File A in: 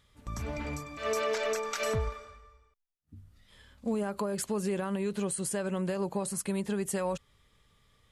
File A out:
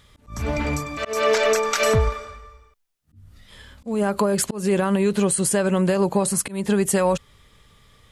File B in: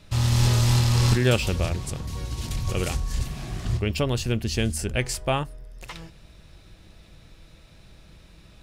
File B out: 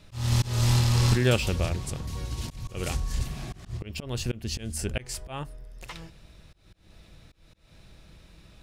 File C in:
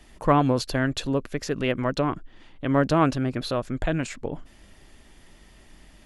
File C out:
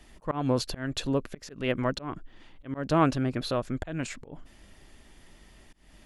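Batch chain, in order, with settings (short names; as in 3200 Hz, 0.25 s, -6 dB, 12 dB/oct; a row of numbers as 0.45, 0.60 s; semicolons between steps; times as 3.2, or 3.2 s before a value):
auto swell 0.219 s; normalise peaks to -9 dBFS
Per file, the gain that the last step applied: +12.0, -2.0, -2.0 dB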